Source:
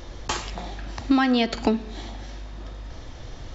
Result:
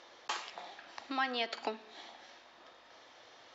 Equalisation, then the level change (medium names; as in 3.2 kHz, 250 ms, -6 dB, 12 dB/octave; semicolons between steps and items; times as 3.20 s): band-pass 640–5100 Hz; -8.0 dB